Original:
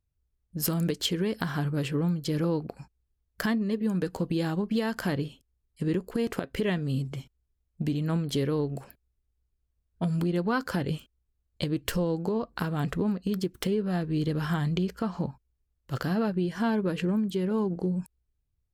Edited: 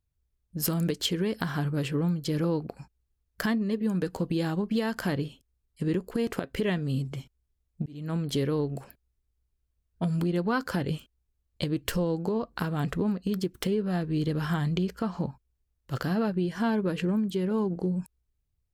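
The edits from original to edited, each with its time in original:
0:07.86–0:08.24: fade in

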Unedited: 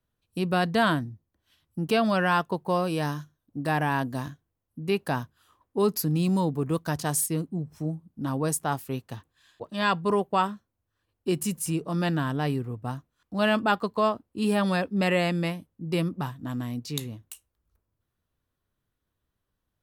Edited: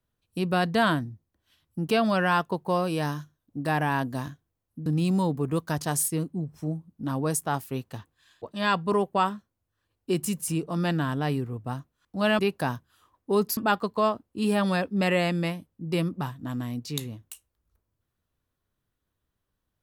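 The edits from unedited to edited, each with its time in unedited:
0:04.86–0:06.04: move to 0:13.57

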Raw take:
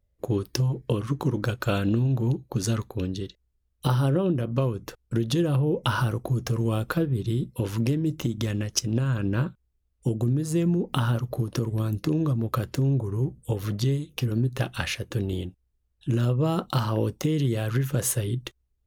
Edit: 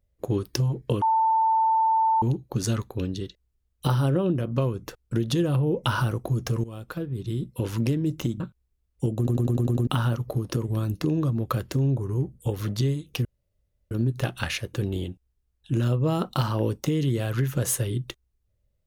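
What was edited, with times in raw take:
0:01.02–0:02.22: beep over 891 Hz −18 dBFS
0:06.64–0:07.69: fade in, from −16.5 dB
0:08.40–0:09.43: remove
0:10.20: stutter in place 0.10 s, 7 plays
0:14.28: splice in room tone 0.66 s

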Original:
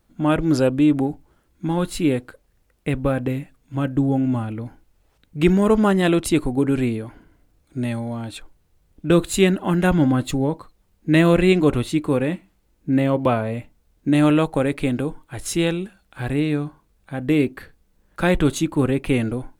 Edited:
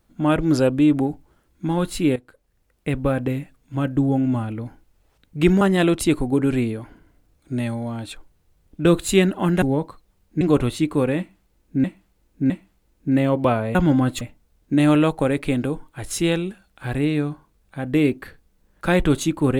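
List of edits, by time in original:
0:02.16–0:03.22: fade in equal-power, from −14.5 dB
0:05.61–0:05.86: remove
0:09.87–0:10.33: move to 0:13.56
0:11.12–0:11.54: remove
0:12.31–0:12.97: repeat, 3 plays

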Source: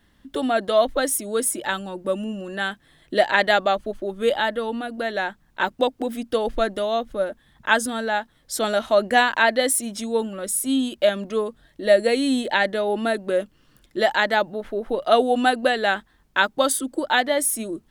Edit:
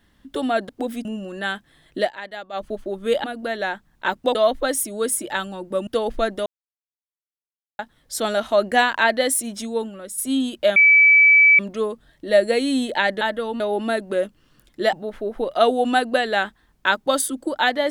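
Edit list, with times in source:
0:00.69–0:02.21: swap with 0:05.90–0:06.26
0:03.15–0:03.81: duck −16 dB, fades 0.13 s
0:04.40–0:04.79: move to 0:12.77
0:06.85–0:08.18: silence
0:09.98–0:10.57: fade out, to −9 dB
0:11.15: insert tone 2,300 Hz −9 dBFS 0.83 s
0:14.10–0:14.44: remove

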